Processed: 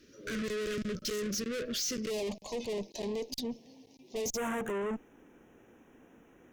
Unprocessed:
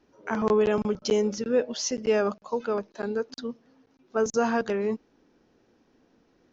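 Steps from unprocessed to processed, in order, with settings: treble shelf 3.2 kHz +11 dB; valve stage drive 38 dB, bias 0.35; Butterworth band-stop 850 Hz, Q 0.98, from 2.09 s 1.4 kHz, from 4.36 s 4.6 kHz; trim +5.5 dB

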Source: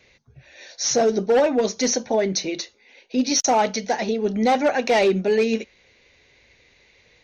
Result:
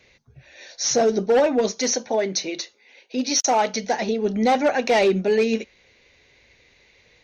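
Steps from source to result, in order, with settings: 1.72–3.74 s: high-pass 310 Hz 6 dB/octave

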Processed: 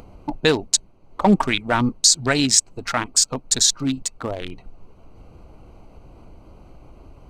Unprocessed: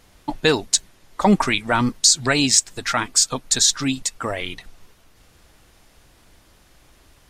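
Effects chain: local Wiener filter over 25 samples; in parallel at -1 dB: upward compressor, threshold -25 dBFS; on the sum: trim -5 dB

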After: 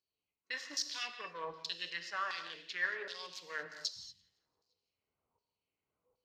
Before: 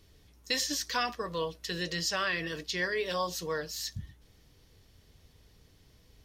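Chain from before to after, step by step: local Wiener filter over 25 samples; spectral noise reduction 16 dB; reverse; compression, threshold -42 dBFS, peak gain reduction 15.5 dB; reverse; feedback echo behind a high-pass 171 ms, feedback 50%, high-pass 2.7 kHz, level -21 dB; LFO band-pass saw down 1.3 Hz 980–5100 Hz; gated-style reverb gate 260 ms flat, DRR 7.5 dB; trim +13 dB

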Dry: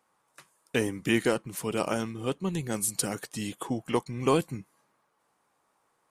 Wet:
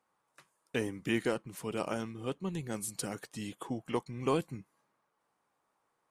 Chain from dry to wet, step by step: treble shelf 5.8 kHz -5.5 dB; trim -6 dB

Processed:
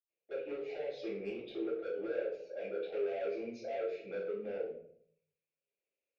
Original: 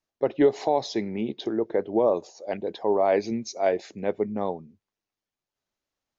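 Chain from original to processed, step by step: compression 3:1, threshold -25 dBFS, peak gain reduction 8.5 dB; overload inside the chain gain 27 dB; two resonant band-passes 1.1 kHz, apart 2.3 oct; saturation -37.5 dBFS, distortion -11 dB; reverberation RT60 0.60 s, pre-delay 77 ms; 2.92–4.58 s: three bands compressed up and down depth 40%; trim +15 dB

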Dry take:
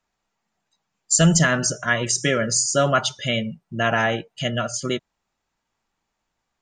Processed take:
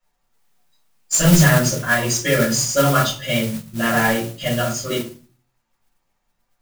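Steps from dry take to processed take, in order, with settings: flange 0.75 Hz, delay 6.2 ms, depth 5.5 ms, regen +71%; simulated room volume 200 m³, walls furnished, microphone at 5.4 m; modulation noise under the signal 12 dB; trim -4.5 dB

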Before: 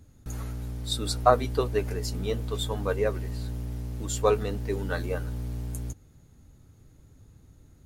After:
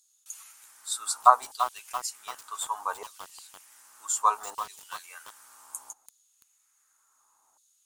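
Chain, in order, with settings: ten-band graphic EQ 125 Hz -12 dB, 250 Hz -4 dB, 500 Hz -8 dB, 1 kHz +9 dB, 2 kHz -9 dB, 4 kHz -6 dB, 8 kHz +11 dB; LFO high-pass saw down 0.66 Hz 760–4000 Hz; bit-crushed delay 337 ms, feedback 55%, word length 5-bit, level -10 dB; trim -2 dB

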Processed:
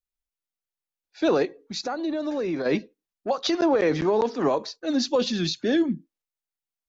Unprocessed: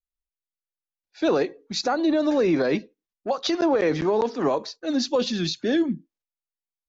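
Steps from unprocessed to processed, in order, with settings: 1.45–2.66 s: compression 1.5:1, threshold -37 dBFS, peak gain reduction 7 dB

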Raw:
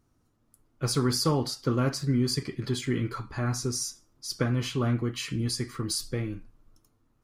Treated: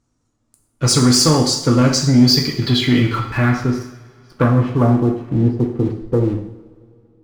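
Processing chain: low-pass sweep 7.5 kHz -> 460 Hz, 1.80–5.70 s; waveshaping leveller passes 2; two-slope reverb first 0.69 s, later 2.8 s, from -20 dB, DRR 3 dB; trim +3.5 dB

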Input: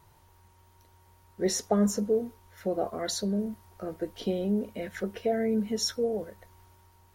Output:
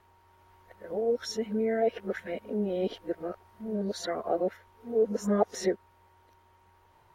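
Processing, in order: reverse the whole clip; tone controls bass -9 dB, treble -13 dB; trim +2 dB

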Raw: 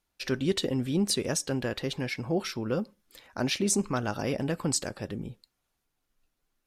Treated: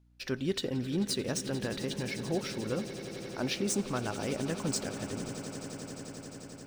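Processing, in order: median filter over 3 samples; echo with a slow build-up 88 ms, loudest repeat 8, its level -17 dB; hum 60 Hz, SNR 29 dB; trim -4.5 dB

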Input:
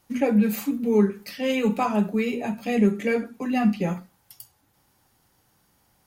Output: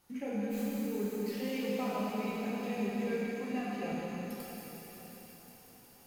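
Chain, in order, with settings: tracing distortion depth 0.029 ms; 3.51–3.92 s: high-pass 320 Hz 12 dB/octave; compression 2:1, threshold -45 dBFS, peak gain reduction 16.5 dB; feedback echo behind a high-pass 180 ms, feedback 83%, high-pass 4.4 kHz, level -6 dB; plate-style reverb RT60 4.7 s, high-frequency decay 0.95×, DRR -7 dB; trim -6 dB

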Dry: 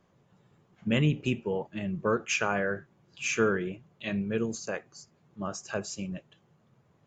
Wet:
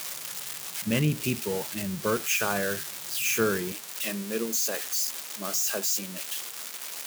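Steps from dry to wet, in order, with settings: zero-crossing glitches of -21 dBFS; high-pass 42 Hz 24 dB/octave, from 3.72 s 210 Hz

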